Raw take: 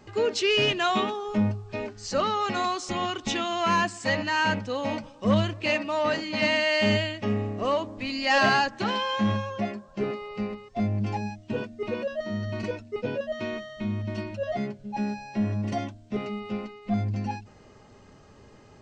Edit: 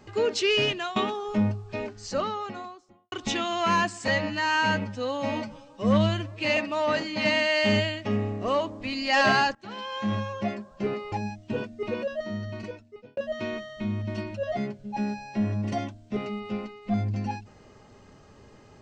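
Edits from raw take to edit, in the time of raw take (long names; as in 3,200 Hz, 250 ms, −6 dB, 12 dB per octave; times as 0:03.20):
0:00.43–0:00.96: fade out equal-power, to −15 dB
0:01.80–0:03.12: fade out and dull
0:04.08–0:05.74: time-stretch 1.5×
0:08.72–0:09.54: fade in, from −22 dB
0:10.29–0:11.12: remove
0:12.13–0:13.17: fade out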